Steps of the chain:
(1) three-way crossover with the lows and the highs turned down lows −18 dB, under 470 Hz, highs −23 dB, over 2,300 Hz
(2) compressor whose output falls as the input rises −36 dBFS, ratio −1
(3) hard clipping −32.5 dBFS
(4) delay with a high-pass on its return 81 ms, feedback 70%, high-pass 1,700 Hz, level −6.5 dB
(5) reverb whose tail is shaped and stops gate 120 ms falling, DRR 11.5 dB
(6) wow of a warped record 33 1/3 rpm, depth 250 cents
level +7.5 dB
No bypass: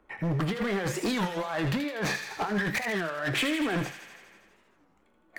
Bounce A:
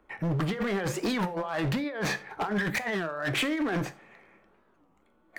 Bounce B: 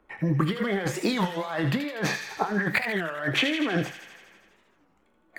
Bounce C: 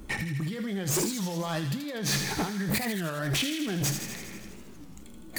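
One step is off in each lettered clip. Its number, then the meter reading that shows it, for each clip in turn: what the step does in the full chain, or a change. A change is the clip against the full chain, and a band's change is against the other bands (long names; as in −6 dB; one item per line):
4, change in momentary loudness spread −1 LU
3, distortion level −9 dB
1, 8 kHz band +12.0 dB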